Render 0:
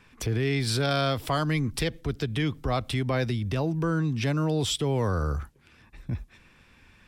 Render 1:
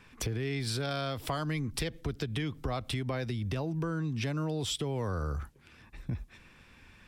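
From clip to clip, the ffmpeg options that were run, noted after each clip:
ffmpeg -i in.wav -af "acompressor=threshold=-30dB:ratio=6" out.wav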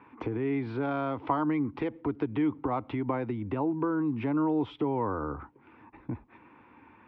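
ffmpeg -i in.wav -af "highpass=160,equalizer=frequency=170:width_type=q:width=4:gain=-10,equalizer=frequency=300:width_type=q:width=4:gain=9,equalizer=frequency=610:width_type=q:width=4:gain=-4,equalizer=frequency=920:width_type=q:width=4:gain=10,equalizer=frequency=1700:width_type=q:width=4:gain=-8,lowpass=frequency=2000:width=0.5412,lowpass=frequency=2000:width=1.3066,volume=4dB" out.wav

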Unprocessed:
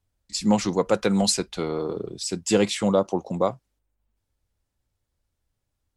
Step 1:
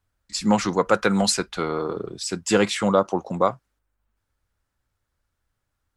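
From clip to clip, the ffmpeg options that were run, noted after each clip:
ffmpeg -i in.wav -af "equalizer=frequency=1400:width_type=o:width=1.1:gain=10" out.wav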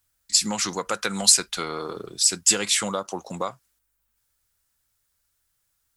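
ffmpeg -i in.wav -af "acompressor=threshold=-20dB:ratio=4,crystalizer=i=8:c=0,volume=-6.5dB" out.wav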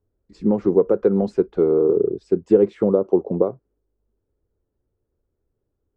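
ffmpeg -i in.wav -af "lowpass=frequency=410:width_type=q:width=4.2,volume=8dB" out.wav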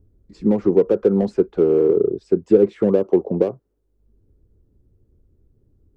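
ffmpeg -i in.wav -filter_complex "[0:a]acrossover=split=320|670[link_01][link_02][link_03];[link_01]acompressor=mode=upward:threshold=-43dB:ratio=2.5[link_04];[link_03]asoftclip=type=hard:threshold=-34.5dB[link_05];[link_04][link_02][link_05]amix=inputs=3:normalize=0,volume=1.5dB" out.wav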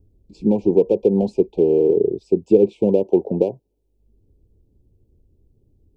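ffmpeg -i in.wav -af "asuperstop=centerf=1500:order=20:qfactor=1.1" out.wav

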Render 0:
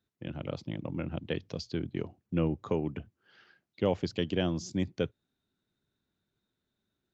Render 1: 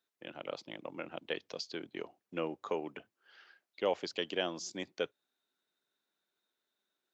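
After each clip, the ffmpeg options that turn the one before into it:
ffmpeg -i in.wav -af "highpass=530,volume=1dB" out.wav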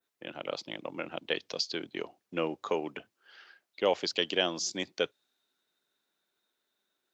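ffmpeg -i in.wav -af "adynamicequalizer=threshold=0.00224:dfrequency=4700:dqfactor=0.76:tfrequency=4700:tqfactor=0.76:attack=5:release=100:ratio=0.375:range=3:mode=boostabove:tftype=bell,volume=4.5dB" out.wav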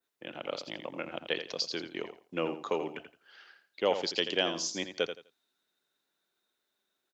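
ffmpeg -i in.wav -af "aecho=1:1:84|168|252:0.335|0.0737|0.0162,volume=-1dB" out.wav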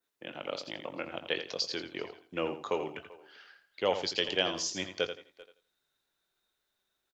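ffmpeg -i in.wav -filter_complex "[0:a]asplit=2[link_01][link_02];[link_02]adelay=21,volume=-12dB[link_03];[link_01][link_03]amix=inputs=2:normalize=0,asplit=2[link_04][link_05];[link_05]adelay=390,highpass=300,lowpass=3400,asoftclip=type=hard:threshold=-19.5dB,volume=-20dB[link_06];[link_04][link_06]amix=inputs=2:normalize=0,asubboost=boost=5.5:cutoff=97" out.wav

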